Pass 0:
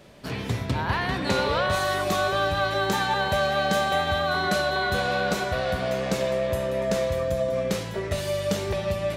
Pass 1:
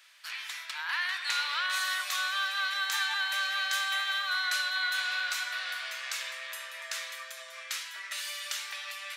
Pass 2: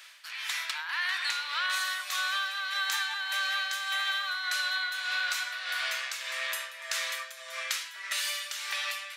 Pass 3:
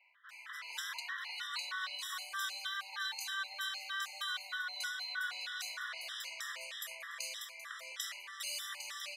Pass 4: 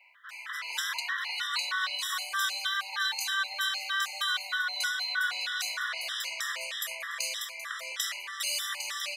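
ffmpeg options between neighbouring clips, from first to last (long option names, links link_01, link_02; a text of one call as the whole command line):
ffmpeg -i in.wav -af "highpass=frequency=1400:width=0.5412,highpass=frequency=1400:width=1.3066" out.wav
ffmpeg -i in.wav -af "tremolo=f=1.7:d=0.72,acompressor=threshold=-36dB:ratio=6,volume=8.5dB" out.wav
ffmpeg -i in.wav -filter_complex "[0:a]acrossover=split=710|2200[link_01][link_02][link_03];[link_01]adelay=210[link_04];[link_03]adelay=290[link_05];[link_04][link_02][link_05]amix=inputs=3:normalize=0,afftfilt=real='re*gt(sin(2*PI*3.2*pts/sr)*(1-2*mod(floor(b*sr/1024/1000),2)),0)':imag='im*gt(sin(2*PI*3.2*pts/sr)*(1-2*mod(floor(b*sr/1024/1000),2)),0)':win_size=1024:overlap=0.75,volume=-4.5dB" out.wav
ffmpeg -i in.wav -af "asoftclip=type=hard:threshold=-28.5dB,volume=9dB" out.wav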